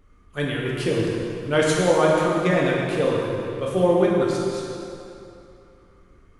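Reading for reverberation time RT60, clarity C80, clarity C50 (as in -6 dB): 2.8 s, 0.5 dB, -1.0 dB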